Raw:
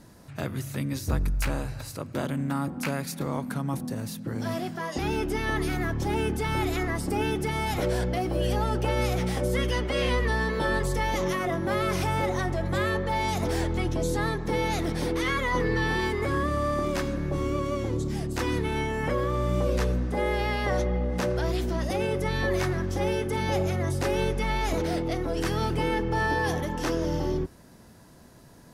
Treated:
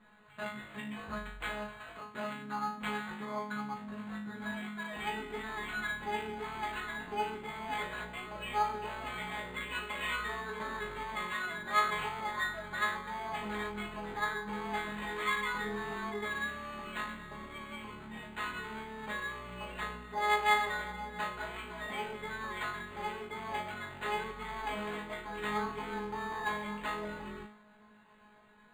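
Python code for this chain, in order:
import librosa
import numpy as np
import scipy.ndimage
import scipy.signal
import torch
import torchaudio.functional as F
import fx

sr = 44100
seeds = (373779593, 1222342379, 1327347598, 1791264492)

y = fx.band_shelf(x, sr, hz=2000.0, db=13.5, octaves=2.7)
y = fx.comb_fb(y, sr, f0_hz=210.0, decay_s=0.45, harmonics='all', damping=0.0, mix_pct=100)
y = np.interp(np.arange(len(y)), np.arange(len(y))[::8], y[::8])
y = y * 10.0 ** (2.5 / 20.0)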